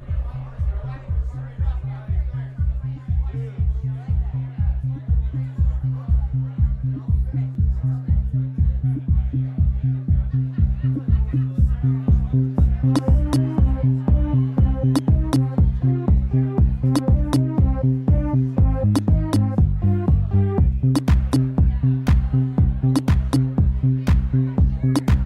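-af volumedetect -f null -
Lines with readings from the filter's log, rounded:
mean_volume: -18.8 dB
max_volume: -7.4 dB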